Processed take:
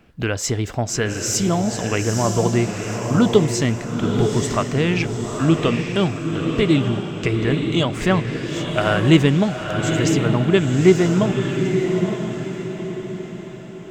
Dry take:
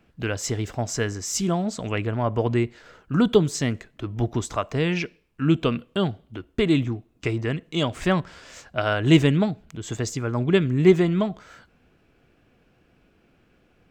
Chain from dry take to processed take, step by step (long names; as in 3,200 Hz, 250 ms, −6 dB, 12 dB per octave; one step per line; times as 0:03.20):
in parallel at −0.5 dB: downward compressor, threshold −30 dBFS, peak gain reduction 19 dB
on the sum: feedback delay with all-pass diffusion 911 ms, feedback 44%, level −4.5 dB
level +1.5 dB